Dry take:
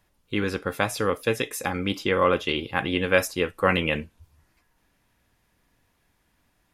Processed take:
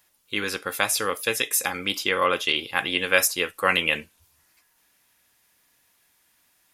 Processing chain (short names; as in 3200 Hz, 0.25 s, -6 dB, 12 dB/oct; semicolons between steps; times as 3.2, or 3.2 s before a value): tilt +3.5 dB/oct